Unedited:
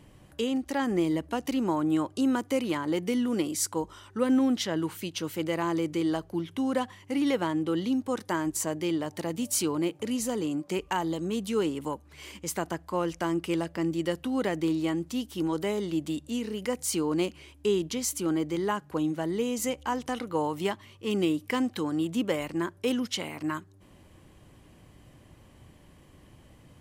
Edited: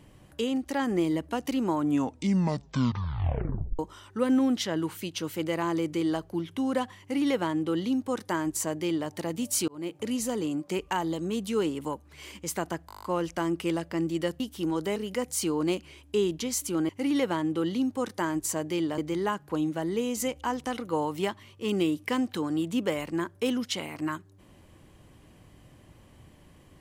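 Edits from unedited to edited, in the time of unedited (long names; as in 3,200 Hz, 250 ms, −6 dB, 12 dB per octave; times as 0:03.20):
0:01.77: tape stop 2.02 s
0:07.00–0:09.09: duplicate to 0:18.40
0:09.68–0:10.02: fade in
0:12.87: stutter 0.02 s, 9 plays
0:14.24–0:15.17: remove
0:15.73–0:16.47: remove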